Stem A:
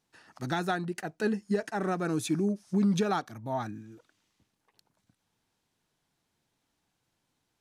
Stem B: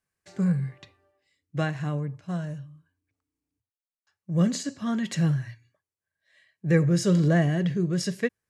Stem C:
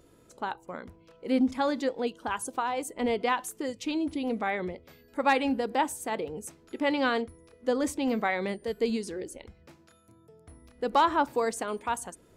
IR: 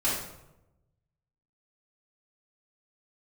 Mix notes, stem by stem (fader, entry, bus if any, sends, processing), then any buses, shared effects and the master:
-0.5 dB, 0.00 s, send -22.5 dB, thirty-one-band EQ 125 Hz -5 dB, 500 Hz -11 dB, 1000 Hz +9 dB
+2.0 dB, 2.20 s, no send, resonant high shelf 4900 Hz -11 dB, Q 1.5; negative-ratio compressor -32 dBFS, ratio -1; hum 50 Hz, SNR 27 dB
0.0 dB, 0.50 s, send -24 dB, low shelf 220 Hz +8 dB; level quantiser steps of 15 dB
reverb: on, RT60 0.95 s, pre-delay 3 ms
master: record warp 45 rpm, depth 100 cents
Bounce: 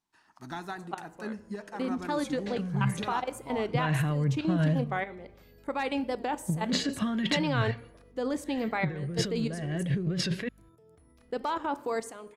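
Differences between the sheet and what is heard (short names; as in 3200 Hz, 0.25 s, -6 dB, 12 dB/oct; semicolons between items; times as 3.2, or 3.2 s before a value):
stem A -0.5 dB -> -9.0 dB; stem C: missing low shelf 220 Hz +8 dB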